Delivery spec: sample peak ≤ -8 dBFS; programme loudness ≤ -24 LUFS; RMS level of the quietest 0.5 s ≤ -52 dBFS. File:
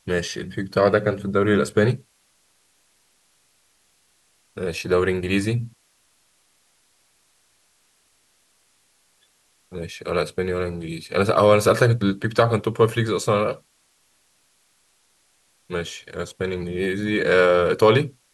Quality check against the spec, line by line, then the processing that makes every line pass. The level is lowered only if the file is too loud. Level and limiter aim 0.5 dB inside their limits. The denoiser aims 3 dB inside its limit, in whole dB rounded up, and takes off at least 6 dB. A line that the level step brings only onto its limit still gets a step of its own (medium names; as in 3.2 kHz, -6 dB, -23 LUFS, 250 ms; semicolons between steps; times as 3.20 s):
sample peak -4.5 dBFS: fail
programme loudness -21.5 LUFS: fail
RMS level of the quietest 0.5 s -63 dBFS: pass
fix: trim -3 dB; peak limiter -8.5 dBFS